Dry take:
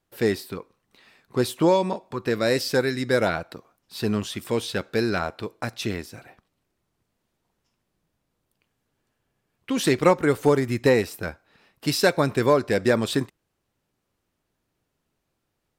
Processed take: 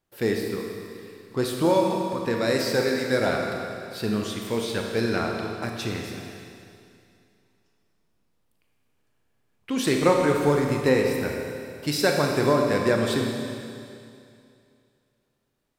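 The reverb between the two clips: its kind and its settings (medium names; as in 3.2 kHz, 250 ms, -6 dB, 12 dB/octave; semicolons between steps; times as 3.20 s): Schroeder reverb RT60 2.5 s, combs from 27 ms, DRR 1 dB; trim -3 dB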